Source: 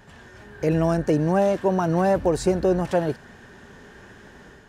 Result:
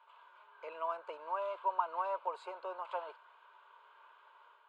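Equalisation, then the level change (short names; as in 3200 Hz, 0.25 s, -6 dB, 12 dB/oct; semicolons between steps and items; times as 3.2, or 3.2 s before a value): ladder high-pass 850 Hz, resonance 75%; air absorption 150 m; fixed phaser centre 1200 Hz, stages 8; +1.0 dB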